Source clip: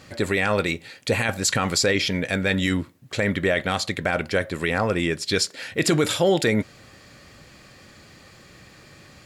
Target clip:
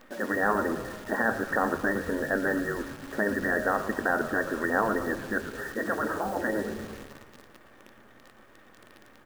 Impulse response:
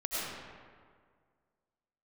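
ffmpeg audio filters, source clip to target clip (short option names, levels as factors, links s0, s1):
-filter_complex "[0:a]asplit=2[s0][s1];[1:a]atrim=start_sample=2205,lowpass=4500[s2];[s1][s2]afir=irnorm=-1:irlink=0,volume=0.0944[s3];[s0][s3]amix=inputs=2:normalize=0,afftfilt=real='re*between(b*sr/4096,200,1900)':imag='im*between(b*sr/4096,200,1900)':win_size=4096:overlap=0.75,acrusher=bits=8:dc=4:mix=0:aa=0.000001,afftfilt=real='re*lt(hypot(re,im),0.447)':imag='im*lt(hypot(re,im),0.447)':win_size=1024:overlap=0.75,asplit=7[s4][s5][s6][s7][s8][s9][s10];[s5]adelay=113,afreqshift=-120,volume=0.237[s11];[s6]adelay=226,afreqshift=-240,volume=0.13[s12];[s7]adelay=339,afreqshift=-360,volume=0.0716[s13];[s8]adelay=452,afreqshift=-480,volume=0.0394[s14];[s9]adelay=565,afreqshift=-600,volume=0.0216[s15];[s10]adelay=678,afreqshift=-720,volume=0.0119[s16];[s4][s11][s12][s13][s14][s15][s16]amix=inputs=7:normalize=0"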